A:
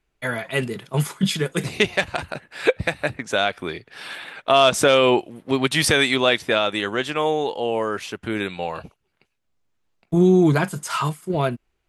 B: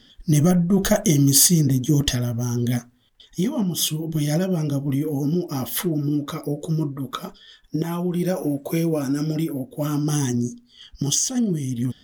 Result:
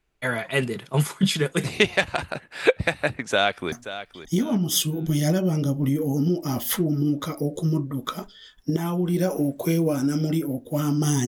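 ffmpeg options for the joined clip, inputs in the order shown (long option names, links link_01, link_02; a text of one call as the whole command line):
ffmpeg -i cue0.wav -i cue1.wav -filter_complex "[0:a]apad=whole_dur=11.27,atrim=end=11.27,atrim=end=3.722[link_01];[1:a]atrim=start=2.778:end=10.33[link_02];[link_01][link_02]acrossfade=duration=0.004:curve1=hsin:curve2=hsin,asplit=2[link_03][link_04];[link_04]afade=type=in:start_time=3.29:duration=0.01,afade=type=out:start_time=3.72:duration=0.01,aecho=0:1:530|1060|1590:0.223872|0.055968|0.013992[link_05];[link_03][link_05]amix=inputs=2:normalize=0" out.wav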